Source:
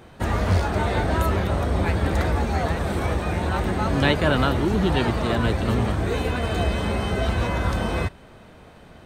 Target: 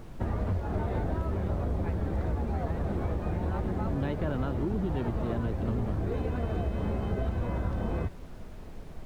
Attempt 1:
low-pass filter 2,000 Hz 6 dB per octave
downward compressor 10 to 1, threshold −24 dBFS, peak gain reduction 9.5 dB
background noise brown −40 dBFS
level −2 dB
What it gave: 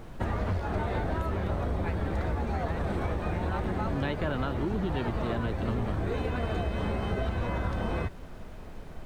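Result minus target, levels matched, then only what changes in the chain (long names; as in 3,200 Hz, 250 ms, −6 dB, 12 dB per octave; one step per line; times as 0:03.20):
2,000 Hz band +6.5 dB
change: low-pass filter 520 Hz 6 dB per octave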